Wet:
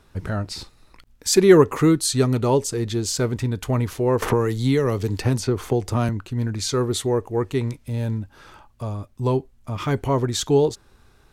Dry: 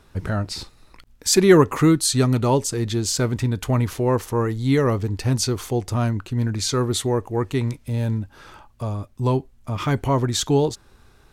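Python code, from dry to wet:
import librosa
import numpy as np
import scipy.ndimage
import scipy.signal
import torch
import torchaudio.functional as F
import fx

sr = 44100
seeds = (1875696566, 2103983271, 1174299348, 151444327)

y = fx.dynamic_eq(x, sr, hz=430.0, q=2.7, threshold_db=-33.0, ratio=4.0, max_db=5)
y = fx.band_squash(y, sr, depth_pct=100, at=(4.22, 6.09))
y = y * librosa.db_to_amplitude(-2.0)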